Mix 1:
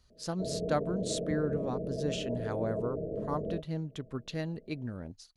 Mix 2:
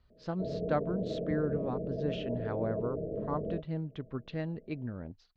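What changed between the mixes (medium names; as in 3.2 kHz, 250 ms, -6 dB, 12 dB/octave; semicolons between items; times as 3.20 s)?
speech: add low-pass 3.6 kHz 12 dB/octave; master: add distance through air 160 m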